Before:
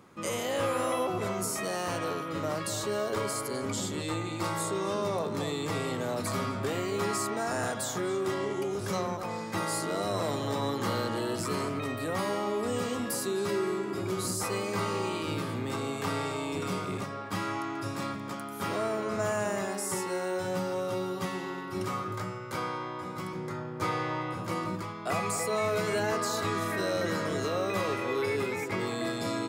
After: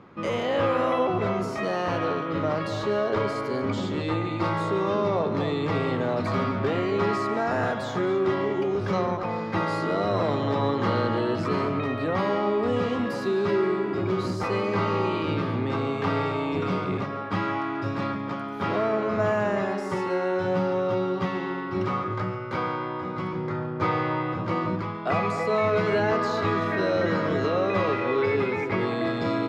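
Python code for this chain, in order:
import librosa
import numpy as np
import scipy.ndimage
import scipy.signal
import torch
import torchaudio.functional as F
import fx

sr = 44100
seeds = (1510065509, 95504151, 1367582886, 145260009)

p1 = fx.air_absorb(x, sr, metres=260.0)
p2 = p1 + fx.echo_single(p1, sr, ms=141, db=-15.5, dry=0)
y = F.gain(torch.from_numpy(p2), 7.0).numpy()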